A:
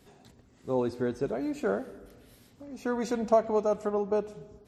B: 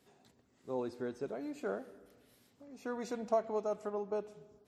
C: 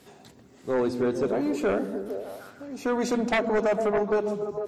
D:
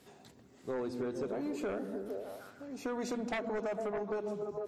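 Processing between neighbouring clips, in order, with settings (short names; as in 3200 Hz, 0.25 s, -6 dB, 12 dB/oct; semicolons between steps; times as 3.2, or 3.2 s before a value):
HPF 200 Hz 6 dB/oct; gain -8 dB
delay with a stepping band-pass 0.151 s, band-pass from 180 Hz, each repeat 0.7 oct, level -3.5 dB; sine folder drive 11 dB, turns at -19 dBFS
compressor, threshold -27 dBFS, peak gain reduction 6.5 dB; gain -6.5 dB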